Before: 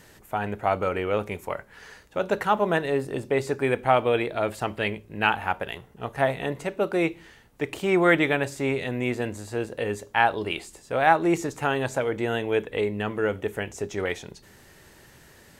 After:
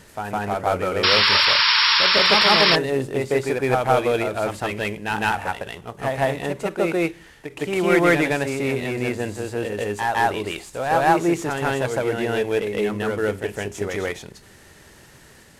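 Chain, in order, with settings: CVSD 64 kbps; on a send: reverse echo 0.159 s -3.5 dB; on the sum: painted sound noise, 1.03–2.76, 870–5600 Hz -19 dBFS; ending taper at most 320 dB/s; gain +2 dB

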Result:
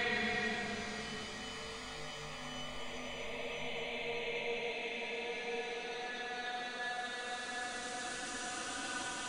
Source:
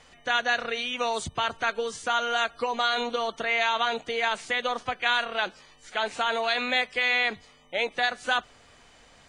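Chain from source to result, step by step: compressor 3:1, threshold -39 dBFS, peak gain reduction 14.5 dB; auto swell 0.4 s; Paulstretch 9.9×, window 0.50 s, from 7.36; on a send: reverb RT60 0.85 s, pre-delay 65 ms, DRR 7 dB; on the sum: gain +13 dB

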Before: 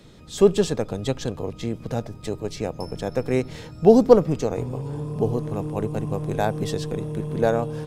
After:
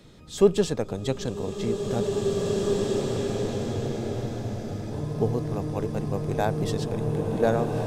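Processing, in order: spectral freeze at 2.08, 2.82 s; bloom reverb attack 2.35 s, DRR -1 dB; gain -2.5 dB

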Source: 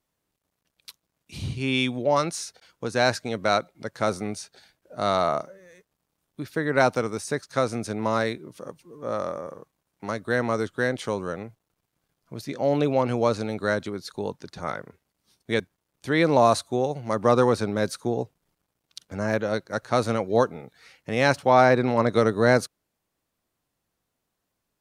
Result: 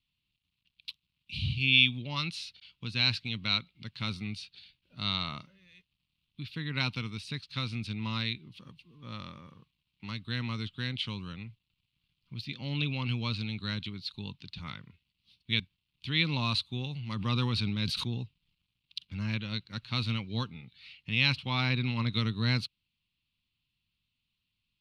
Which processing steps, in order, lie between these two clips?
EQ curve 110 Hz 0 dB, 220 Hz -6 dB, 450 Hz -24 dB, 670 Hz -29 dB, 1000 Hz -13 dB, 1700 Hz -15 dB, 2700 Hz +9 dB, 4300 Hz +3 dB, 6300 Hz -19 dB; 16.76–18.18 sustainer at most 29 dB/s

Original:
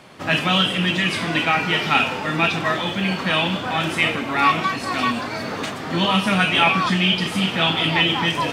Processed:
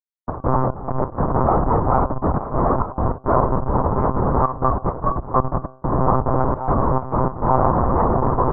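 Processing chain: on a send: feedback echo 0.882 s, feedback 16%, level -3.5 dB; on the sum: Schmitt trigger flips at -15 dBFS; de-hum 113.1 Hz, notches 14; in parallel at -1.5 dB: limiter -21.5 dBFS, peak gain reduction 7.5 dB; on the sum: elliptic low-pass 1100 Hz, stop band 60 dB; tilt shelf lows -8.5 dB, about 740 Hz; step gate "xx.xx.x.xxxxxx" 101 bpm -12 dB; monotone LPC vocoder at 8 kHz 130 Hz; gain +6 dB

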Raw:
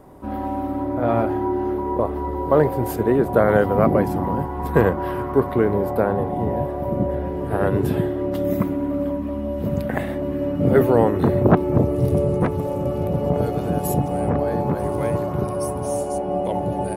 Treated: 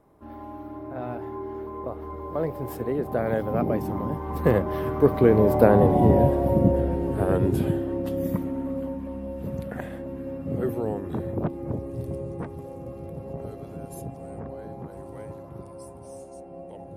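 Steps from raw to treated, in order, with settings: Doppler pass-by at 5.99, 22 m/s, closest 13 m; dynamic EQ 1300 Hz, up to -6 dB, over -42 dBFS, Q 0.76; gain +6.5 dB

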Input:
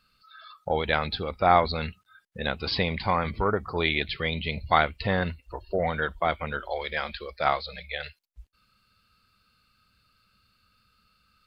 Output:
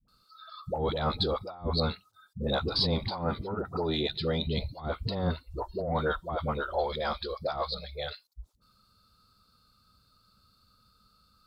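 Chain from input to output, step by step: band shelf 2200 Hz -15 dB 1.1 oct; negative-ratio compressor -28 dBFS, ratio -0.5; added harmonics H 6 -40 dB, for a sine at -11.5 dBFS; 3.1–4.47 notch comb 1100 Hz; dispersion highs, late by 83 ms, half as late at 430 Hz

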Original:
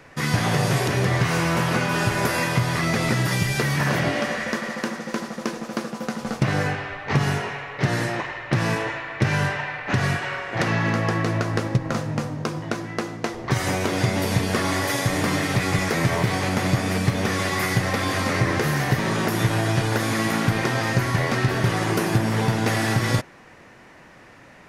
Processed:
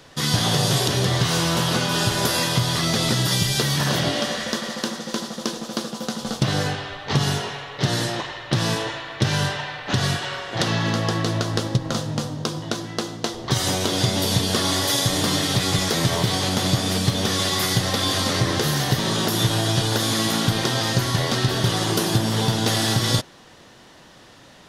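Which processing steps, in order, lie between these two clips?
resonant high shelf 2800 Hz +6 dB, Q 3

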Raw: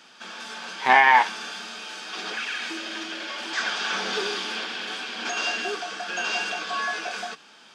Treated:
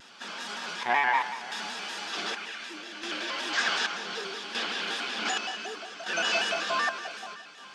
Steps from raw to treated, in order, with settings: chopper 0.66 Hz, depth 65%, duty 55%; echo with dull and thin repeats by turns 0.174 s, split 2100 Hz, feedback 73%, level -12 dB; shaped vibrato square 5.3 Hz, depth 100 cents

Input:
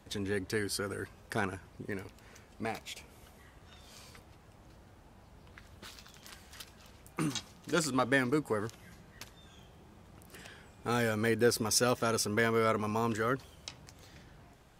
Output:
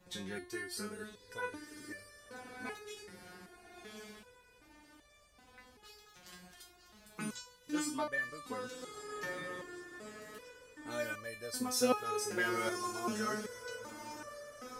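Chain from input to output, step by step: diffused feedback echo 1.126 s, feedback 44%, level -8 dB; stepped resonator 2.6 Hz 180–590 Hz; gain +9 dB

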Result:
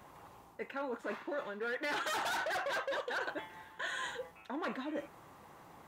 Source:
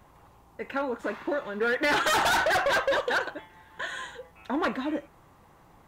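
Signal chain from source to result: reverse; compressor 6:1, threshold -38 dBFS, peak gain reduction 14 dB; reverse; HPF 200 Hz 6 dB/oct; gain +2 dB

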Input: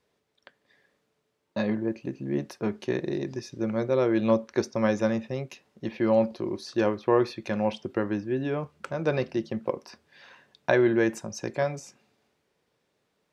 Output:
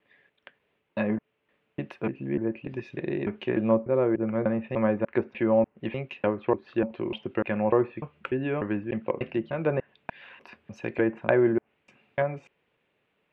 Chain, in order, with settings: slices in reverse order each 0.297 s, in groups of 3; treble ducked by the level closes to 1200 Hz, closed at -22 dBFS; resonant high shelf 3900 Hz -13 dB, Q 3

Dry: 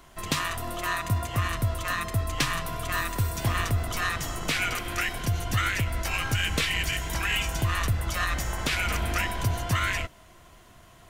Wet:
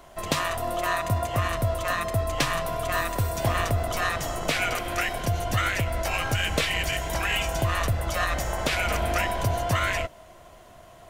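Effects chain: bell 620 Hz +10.5 dB 0.92 oct

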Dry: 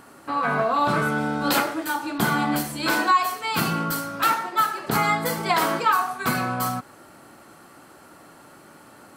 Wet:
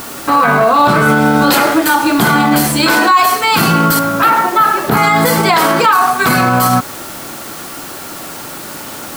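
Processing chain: 3.99–4.97 bell 7300 Hz -13.5 dB 2 oct; requantised 8-bit, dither triangular; maximiser +19 dB; gain -1 dB

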